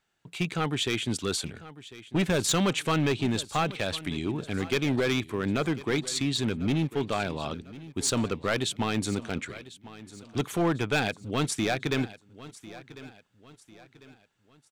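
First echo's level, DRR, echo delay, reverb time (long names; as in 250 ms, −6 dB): −17.5 dB, no reverb audible, 1,048 ms, no reverb audible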